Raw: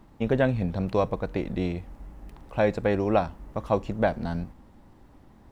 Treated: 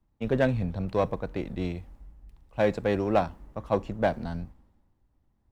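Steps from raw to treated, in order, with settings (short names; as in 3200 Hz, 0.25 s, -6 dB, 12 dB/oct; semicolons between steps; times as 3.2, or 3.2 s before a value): in parallel at -11.5 dB: wavefolder -21.5 dBFS; on the sum: three-band expander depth 70%; gain -3.5 dB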